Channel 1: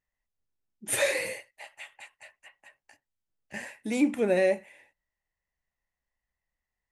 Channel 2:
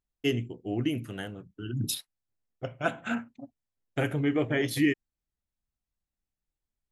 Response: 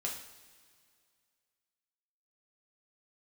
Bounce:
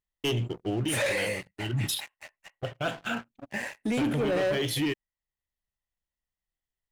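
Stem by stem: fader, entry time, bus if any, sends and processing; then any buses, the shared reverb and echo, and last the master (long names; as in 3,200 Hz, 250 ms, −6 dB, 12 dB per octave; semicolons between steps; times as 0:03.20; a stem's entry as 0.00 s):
−4.0 dB, 0.00 s, no send, high-shelf EQ 6,700 Hz −8.5 dB
+0.5 dB, 0.00 s, no send, thirty-one-band graphic EQ 250 Hz −9 dB, 2,000 Hz −6 dB, 3,150 Hz +8 dB; automatic ducking −7 dB, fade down 0.85 s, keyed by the first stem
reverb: not used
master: leveller curve on the samples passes 3; brickwall limiter −22.5 dBFS, peak gain reduction 6.5 dB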